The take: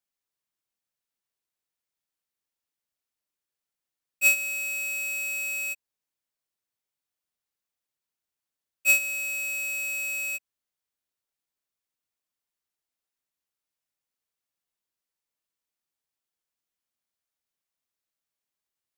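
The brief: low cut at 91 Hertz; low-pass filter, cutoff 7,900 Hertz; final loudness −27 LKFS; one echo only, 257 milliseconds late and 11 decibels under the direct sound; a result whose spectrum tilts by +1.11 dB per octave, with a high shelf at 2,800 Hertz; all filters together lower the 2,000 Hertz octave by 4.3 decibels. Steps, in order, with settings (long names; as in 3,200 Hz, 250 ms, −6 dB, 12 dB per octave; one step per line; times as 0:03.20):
high-pass filter 91 Hz
low-pass filter 7,900 Hz
parametric band 2,000 Hz −9 dB
high-shelf EQ 2,800 Hz +3.5 dB
single-tap delay 257 ms −11 dB
level +1.5 dB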